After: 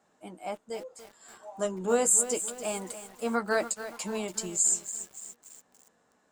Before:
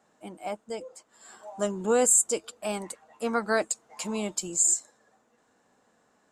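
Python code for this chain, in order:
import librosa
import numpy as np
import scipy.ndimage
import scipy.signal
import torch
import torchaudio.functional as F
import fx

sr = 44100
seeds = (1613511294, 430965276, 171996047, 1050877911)

y = fx.chorus_voices(x, sr, voices=6, hz=1.1, base_ms=14, depth_ms=3.0, mix_pct=25)
y = fx.echo_crushed(y, sr, ms=286, feedback_pct=55, bits=7, wet_db=-11.5)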